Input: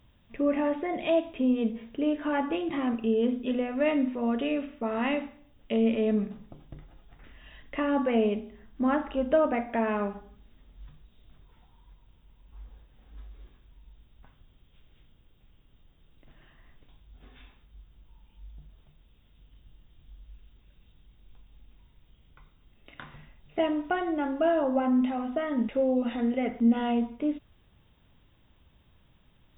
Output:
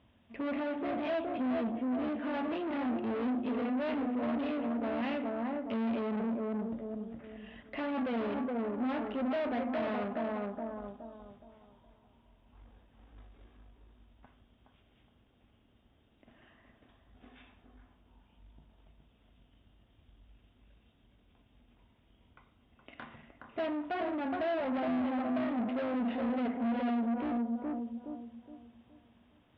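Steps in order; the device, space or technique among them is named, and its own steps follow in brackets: analogue delay pedal into a guitar amplifier (analogue delay 0.418 s, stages 4096, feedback 34%, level -5 dB; tube stage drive 34 dB, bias 0.45; speaker cabinet 82–3400 Hz, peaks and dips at 150 Hz -9 dB, 240 Hz +6 dB, 680 Hz +5 dB)

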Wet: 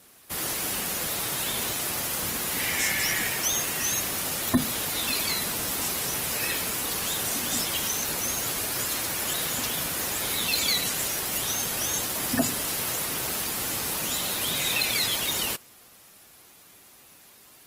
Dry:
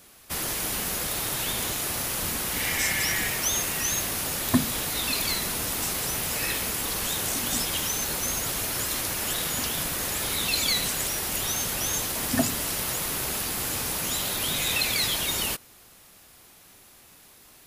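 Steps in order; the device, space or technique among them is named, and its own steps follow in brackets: noise-suppressed video call (HPF 110 Hz 6 dB/oct; spectral gate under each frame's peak -30 dB strong; Opus 20 kbps 48000 Hz)

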